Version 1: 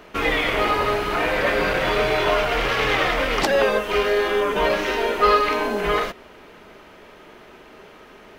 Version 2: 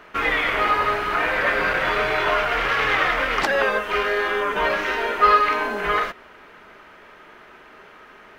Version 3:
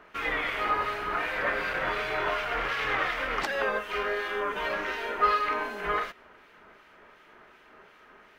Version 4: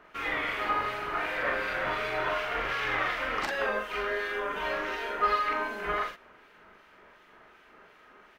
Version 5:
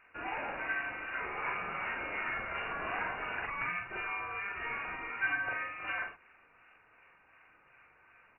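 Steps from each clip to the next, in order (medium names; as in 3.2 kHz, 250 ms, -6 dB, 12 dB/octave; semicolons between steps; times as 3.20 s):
peaking EQ 1.5 kHz +10 dB 1.6 oct; trim -6 dB
harmonic tremolo 2.7 Hz, depth 50%, crossover 2 kHz; trim -6 dB
doubling 42 ms -3 dB; trim -3 dB
frequency inversion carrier 2.8 kHz; trim -6.5 dB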